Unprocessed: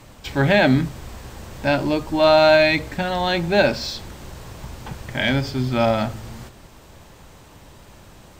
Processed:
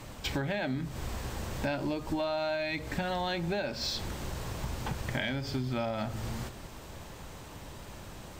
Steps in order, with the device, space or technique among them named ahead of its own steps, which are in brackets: serial compression, leveller first (compression 1.5:1, threshold -25 dBFS, peak gain reduction 5.5 dB; compression 10:1, threshold -29 dBFS, peak gain reduction 14 dB)

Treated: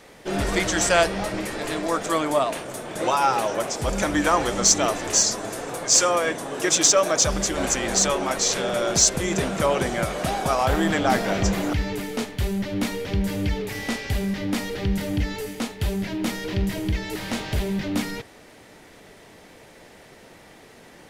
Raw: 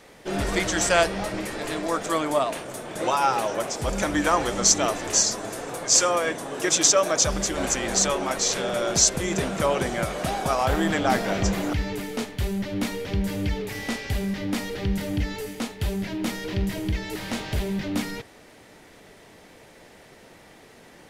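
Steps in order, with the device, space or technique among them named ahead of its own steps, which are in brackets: parallel distortion (in parallel at -13 dB: hard clipper -18 dBFS, distortion -12 dB)

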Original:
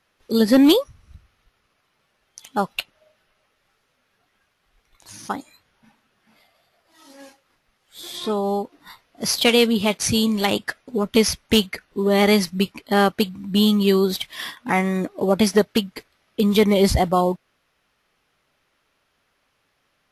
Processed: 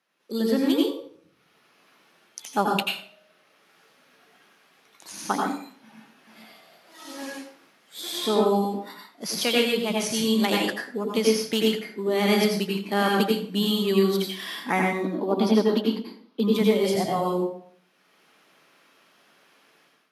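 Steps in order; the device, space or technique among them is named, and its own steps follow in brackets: 14.92–16.50 s: graphic EQ 125/250/1000/2000/4000/8000 Hz -10/+12/+9/-6/+9/-11 dB; far laptop microphone (reverberation RT60 0.50 s, pre-delay 81 ms, DRR -1.5 dB; high-pass 180 Hz 24 dB/octave; level rider gain up to 14 dB); trim -8 dB

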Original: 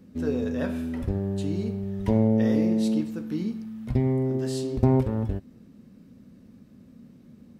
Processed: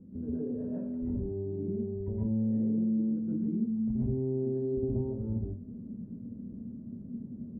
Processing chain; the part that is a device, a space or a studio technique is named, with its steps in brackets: television next door (compression 6:1, threshold -37 dBFS, peak gain reduction 20.5 dB; low-pass 360 Hz 12 dB/octave; reverberation RT60 0.35 s, pre-delay 114 ms, DRR -7 dB)

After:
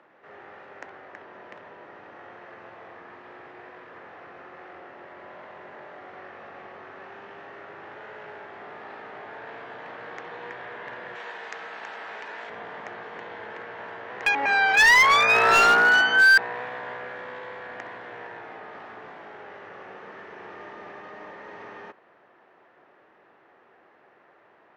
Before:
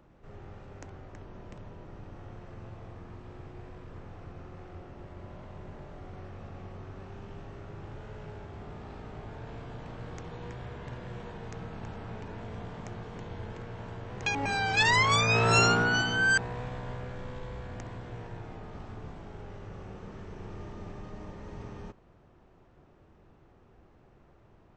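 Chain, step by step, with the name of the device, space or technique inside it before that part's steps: megaphone (band-pass 520–3100 Hz; peaking EQ 1.8 kHz +7.5 dB 0.46 oct; hard clipper -20.5 dBFS, distortion -14 dB); 11.15–12.50 s: RIAA curve recording; trim +8 dB

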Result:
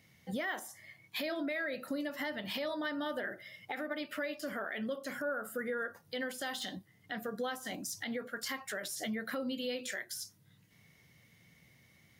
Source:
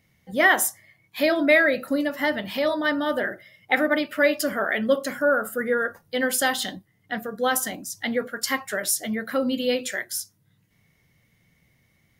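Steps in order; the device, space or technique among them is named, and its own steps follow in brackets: broadcast voice chain (high-pass 83 Hz; de-esser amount 60%; compression 4:1, threshold -36 dBFS, peak gain reduction 18.5 dB; peaking EQ 4.4 kHz +3.5 dB 1.9 oct; peak limiter -28 dBFS, peak gain reduction 8 dB)

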